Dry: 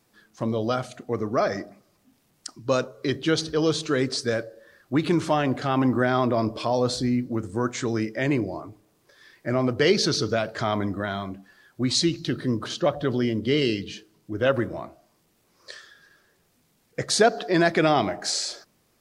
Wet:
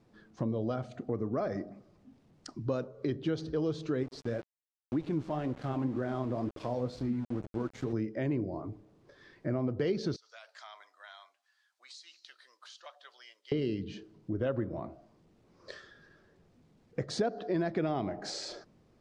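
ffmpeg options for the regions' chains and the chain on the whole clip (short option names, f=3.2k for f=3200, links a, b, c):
-filter_complex "[0:a]asettb=1/sr,asplit=3[a][b][c];[a]atrim=end=4.034[d];[b]atrim=start=4.03:end=7.93,asetpts=PTS-STARTPTS,afade=t=in:d=0.004:c=qsin,afade=t=out:st=3.896:d=0.004:c=qsin,flanger=delay=1.3:depth=8.8:regen=61:speed=2:shape=triangular,aeval=exprs='val(0)*gte(abs(val(0)),0.0168)':c=same[e];[c]atrim=start=7.926[f];[d][e]acrossfade=d=0.004:c1=hsin:c2=qsin[g];[g][f]acrossfade=d=0.004:c1=qsin:c2=hsin,asettb=1/sr,asplit=3[h][i][j];[h]atrim=end=10.164[k];[i]atrim=start=10.16:end=13.52,asetpts=PTS-STARTPTS,afade=t=in:d=0.004:c=qsin,afade=t=out:st=3.356:d=0.004:c=qsin,highpass=f=740:w=0.5412,highpass=f=740:w=1.3066,aderivative,acompressor=threshold=-38dB:ratio=6:attack=3.2:release=140:knee=1:detection=peak[l];[j]atrim=start=13.516[m];[k][l]acrossfade=d=0.004:c1=hsin:c2=qsin[n];[n][m]acrossfade=d=0.004:c1=qsin:c2=hsin,tiltshelf=f=870:g=7,acompressor=threshold=-33dB:ratio=2.5,lowpass=5.7k,volume=-1.5dB"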